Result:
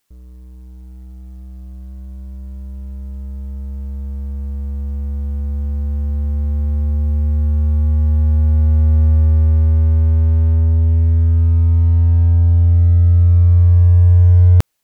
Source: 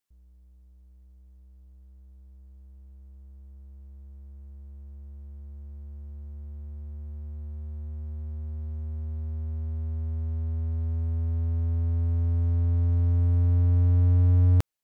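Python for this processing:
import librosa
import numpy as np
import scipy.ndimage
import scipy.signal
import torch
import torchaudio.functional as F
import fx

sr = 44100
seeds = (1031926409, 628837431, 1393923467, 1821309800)

p1 = fx.leveller(x, sr, passes=1)
p2 = fx.over_compress(p1, sr, threshold_db=-28.0, ratio=-0.5)
p3 = p1 + (p2 * librosa.db_to_amplitude(-0.5))
y = p3 * librosa.db_to_amplitude(9.0)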